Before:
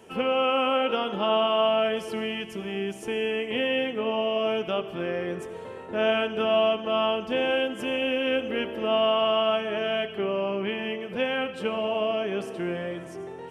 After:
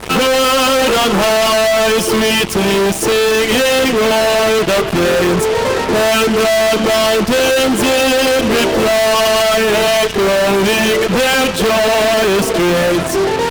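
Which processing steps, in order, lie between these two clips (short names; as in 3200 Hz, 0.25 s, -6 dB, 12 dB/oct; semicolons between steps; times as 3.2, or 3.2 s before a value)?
reverb removal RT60 0.74 s; fuzz box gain 48 dB, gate -48 dBFS; hum 50 Hz, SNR 26 dB; gain +2 dB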